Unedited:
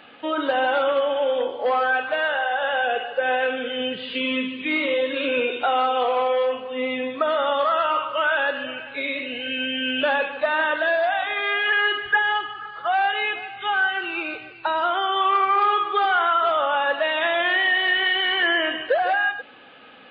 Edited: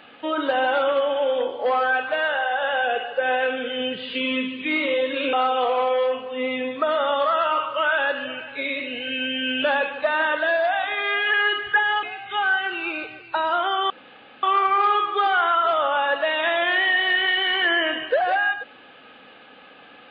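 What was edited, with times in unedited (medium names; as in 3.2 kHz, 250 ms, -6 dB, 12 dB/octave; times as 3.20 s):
5.33–5.72 s: delete
12.42–13.34 s: delete
15.21 s: insert room tone 0.53 s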